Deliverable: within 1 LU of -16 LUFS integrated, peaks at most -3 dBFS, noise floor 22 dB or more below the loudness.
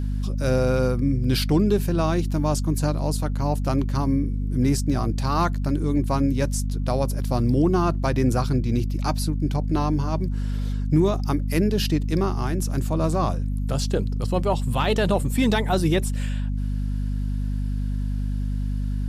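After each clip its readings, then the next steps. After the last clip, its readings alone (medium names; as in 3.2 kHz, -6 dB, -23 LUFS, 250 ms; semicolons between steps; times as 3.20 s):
tick rate 23 per s; hum 50 Hz; highest harmonic 250 Hz; hum level -22 dBFS; loudness -24.0 LUFS; peak level -9.0 dBFS; loudness target -16.0 LUFS
-> de-click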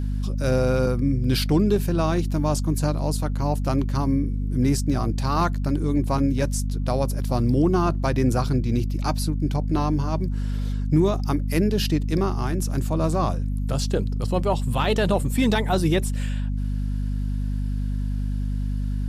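tick rate 0.052 per s; hum 50 Hz; highest harmonic 250 Hz; hum level -22 dBFS
-> hum notches 50/100/150/200/250 Hz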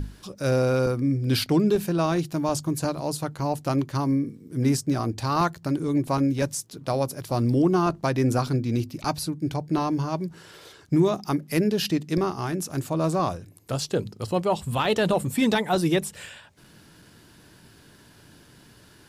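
hum not found; loudness -25.0 LUFS; peak level -10.0 dBFS; loudness target -16.0 LUFS
-> trim +9 dB; peak limiter -3 dBFS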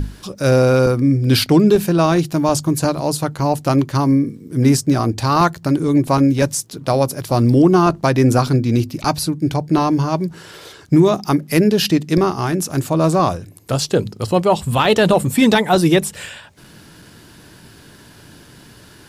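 loudness -16.0 LUFS; peak level -3.0 dBFS; noise floor -44 dBFS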